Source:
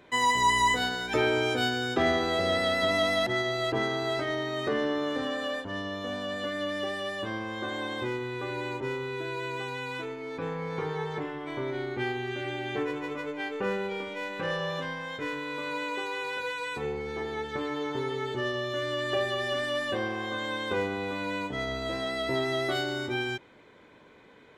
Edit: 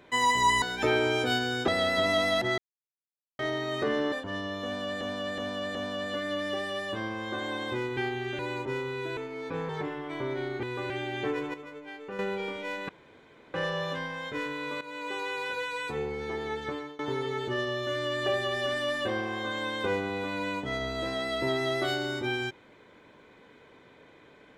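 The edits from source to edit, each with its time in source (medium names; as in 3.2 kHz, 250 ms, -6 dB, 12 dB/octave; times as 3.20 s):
0.62–0.93 s: delete
1.99–2.53 s: delete
3.43–4.24 s: mute
4.97–5.53 s: delete
6.05–6.42 s: loop, 4 plays
8.27–8.54 s: swap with 12.00–12.42 s
9.32–10.05 s: delete
10.57–11.06 s: delete
13.06–13.71 s: gain -9 dB
14.41 s: insert room tone 0.65 s
15.68–16.07 s: fade in, from -14 dB
17.51–17.86 s: fade out, to -23 dB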